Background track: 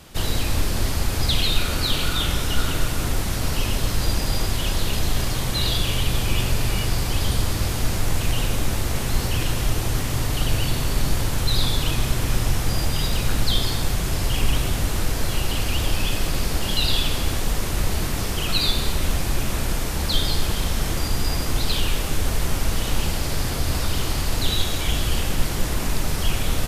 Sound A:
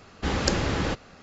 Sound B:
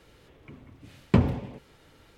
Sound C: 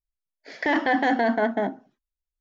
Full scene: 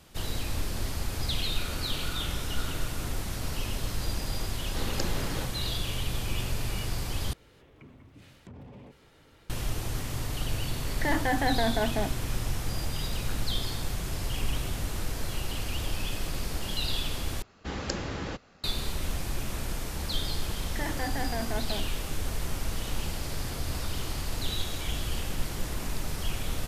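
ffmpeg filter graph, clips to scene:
-filter_complex "[1:a]asplit=2[s0][s1];[3:a]asplit=2[s2][s3];[0:a]volume=0.335[s4];[2:a]acompressor=threshold=0.00891:ratio=10:attack=0.18:release=45:knee=6:detection=peak[s5];[s4]asplit=3[s6][s7][s8];[s6]atrim=end=7.334[s9];[s5]atrim=end=2.17,asetpts=PTS-STARTPTS,volume=0.841[s10];[s7]atrim=start=9.496:end=17.424[s11];[s1]atrim=end=1.22,asetpts=PTS-STARTPTS,volume=0.376[s12];[s8]atrim=start=18.636[s13];[s0]atrim=end=1.22,asetpts=PTS-STARTPTS,volume=0.335,afade=t=in:d=0.004:c=hsin,afade=t=out:st=1.216:d=0.004:c=hsin,adelay=4520[s14];[s2]atrim=end=2.4,asetpts=PTS-STARTPTS,volume=0.501,afade=t=in:d=0.004:c=hsin,afade=t=out:st=2.396:d=0.004:c=hsin,adelay=10390[s15];[s3]atrim=end=2.4,asetpts=PTS-STARTPTS,volume=0.224,afade=t=in:d=0.004:c=hsin,afade=t=out:st=2.396:d=0.004:c=hsin,adelay=20130[s16];[s9][s10]acrossfade=d=0.004:c1=hsin:c2=hsin[s17];[s17][s11]acrossfade=d=0.004:c1=hsin:c2=hsin[s18];[s18][s12]acrossfade=d=0.004:c1=hsin:c2=hsin[s19];[s19][s13]acrossfade=d=0.004:c1=hsin:c2=hsin[s20];[s20][s14][s15][s16]amix=inputs=4:normalize=0"

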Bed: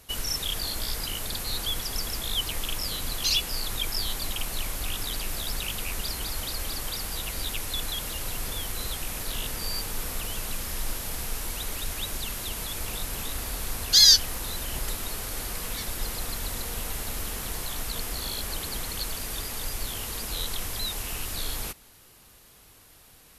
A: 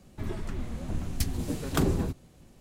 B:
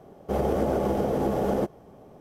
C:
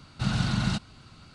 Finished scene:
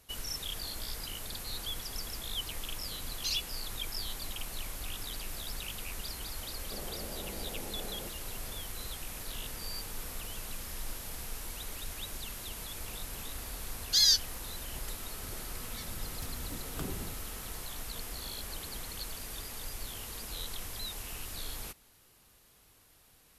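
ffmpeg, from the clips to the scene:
-filter_complex "[0:a]volume=0.376[s0];[2:a]acompressor=threshold=0.0158:ratio=6:attack=3.2:release=140:knee=1:detection=peak[s1];[1:a]aeval=exprs='val(0)+0.00562*sin(2*PI*1300*n/s)':c=same[s2];[s1]atrim=end=2.2,asetpts=PTS-STARTPTS,volume=0.447,afade=t=in:d=0.004:c=hsin,afade=t=out:st=2.196:d=0.004:c=hsin,adelay=6430[s3];[s2]atrim=end=2.6,asetpts=PTS-STARTPTS,volume=0.188,afade=t=in:d=0.004:c=hsin,afade=t=out:st=2.596:d=0.004:c=hsin,adelay=15020[s4];[s0][s3][s4]amix=inputs=3:normalize=0"

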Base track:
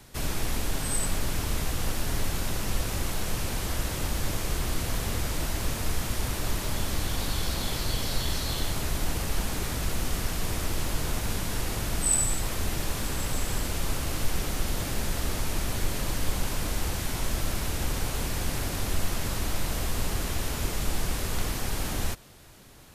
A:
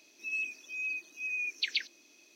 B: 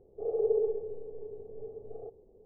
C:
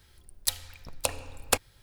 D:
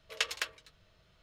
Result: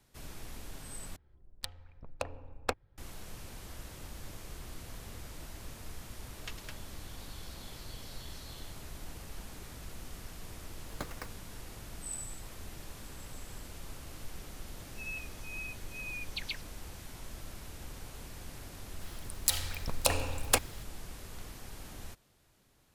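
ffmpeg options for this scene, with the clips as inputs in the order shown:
-filter_complex "[3:a]asplit=2[s0][s1];[4:a]asplit=2[s2][s3];[0:a]volume=0.15[s4];[s0]adynamicsmooth=sensitivity=1:basefreq=1100[s5];[s3]acrusher=samples=15:mix=1:aa=0.000001:lfo=1:lforange=9:lforate=2.2[s6];[s1]alimiter=level_in=5.62:limit=0.891:release=50:level=0:latency=1[s7];[s4]asplit=2[s8][s9];[s8]atrim=end=1.164[s10];[s5]atrim=end=1.82,asetpts=PTS-STARTPTS,volume=0.596[s11];[s9]atrim=start=2.976[s12];[s2]atrim=end=1.22,asetpts=PTS-STARTPTS,volume=0.2,afade=t=in:d=0.004:c=hsin,afade=t=out:st=1.216:d=0.004:c=hsin,adelay=6270[s13];[s6]atrim=end=1.22,asetpts=PTS-STARTPTS,volume=0.335,afade=t=in:d=0.004:c=hsin,afade=t=out:st=1.216:d=0.004:c=hsin,adelay=10800[s14];[1:a]atrim=end=2.35,asetpts=PTS-STARTPTS,volume=0.422,afade=t=in:d=0.004:c=hsin,afade=t=out:st=2.346:d=0.004:c=hsin,adelay=14740[s15];[s7]atrim=end=1.82,asetpts=PTS-STARTPTS,volume=0.447,afade=t=in:d=0.004:c=hsin,afade=t=out:st=1.816:d=0.004:c=hsin,adelay=19010[s16];[s10][s11]acrossfade=d=0.004:c1=hsin:c2=hsin[s17];[s17][s12]acrossfade=d=0.004:c1=hsin:c2=hsin[s18];[s18][s13][s14][s15][s16]amix=inputs=5:normalize=0"

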